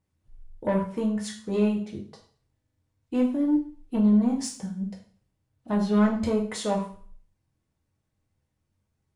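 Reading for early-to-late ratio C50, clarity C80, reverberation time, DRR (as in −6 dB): 8.5 dB, 12.5 dB, 0.45 s, −2.0 dB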